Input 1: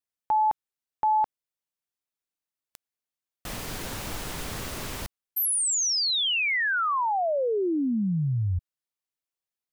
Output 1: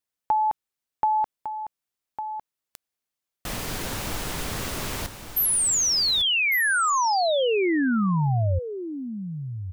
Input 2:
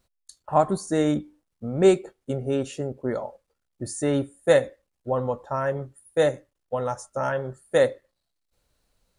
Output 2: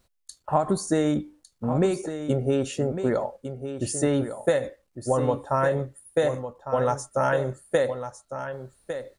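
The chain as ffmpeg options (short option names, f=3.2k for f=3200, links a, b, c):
-filter_complex "[0:a]acompressor=threshold=-26dB:ratio=12:attack=72:release=94:knee=1:detection=rms,asplit=2[a][b];[b]aecho=0:1:1154:0.316[c];[a][c]amix=inputs=2:normalize=0,volume=4dB"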